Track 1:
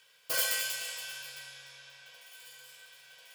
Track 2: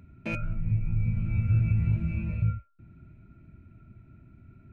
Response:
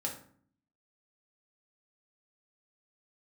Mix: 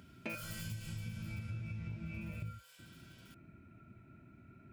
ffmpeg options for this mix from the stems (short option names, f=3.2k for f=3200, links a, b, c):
-filter_complex "[0:a]asoftclip=type=tanh:threshold=-30.5dB,volume=-8dB[a];[1:a]highpass=f=320:p=1,volume=2dB[b];[a][b]amix=inputs=2:normalize=0,acompressor=threshold=-40dB:ratio=6"